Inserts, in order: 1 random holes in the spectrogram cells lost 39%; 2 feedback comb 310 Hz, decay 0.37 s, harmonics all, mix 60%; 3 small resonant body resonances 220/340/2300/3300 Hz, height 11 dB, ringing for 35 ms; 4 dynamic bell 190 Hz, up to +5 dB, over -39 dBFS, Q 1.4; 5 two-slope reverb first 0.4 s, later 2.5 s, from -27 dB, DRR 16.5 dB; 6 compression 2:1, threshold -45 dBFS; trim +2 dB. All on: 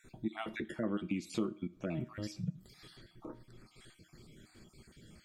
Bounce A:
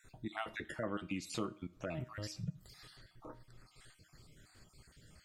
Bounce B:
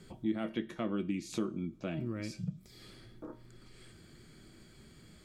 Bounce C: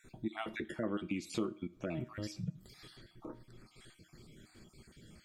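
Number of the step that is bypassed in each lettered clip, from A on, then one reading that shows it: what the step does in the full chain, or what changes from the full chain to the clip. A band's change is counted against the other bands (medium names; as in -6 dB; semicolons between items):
3, 250 Hz band -7.5 dB; 1, 2 kHz band -2.5 dB; 4, 250 Hz band -2.5 dB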